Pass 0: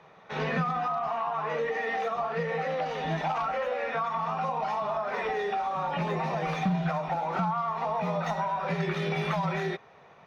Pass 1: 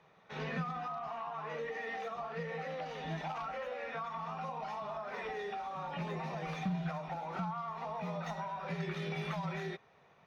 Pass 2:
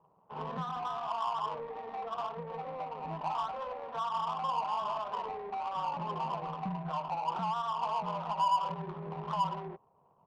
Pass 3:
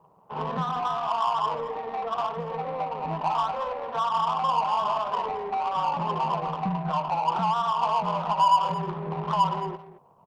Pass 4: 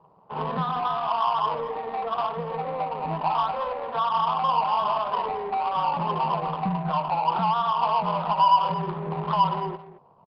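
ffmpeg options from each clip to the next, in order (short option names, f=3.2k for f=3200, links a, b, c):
-af "equalizer=f=760:w=0.47:g=-4,volume=-7dB"
-af "lowpass=f=1k:t=q:w=8.1,adynamicsmooth=sensitivity=3.5:basefreq=530,volume=-3dB"
-af "aecho=1:1:220:0.2,volume=8.5dB"
-af "aresample=11025,aresample=44100,volume=1.5dB"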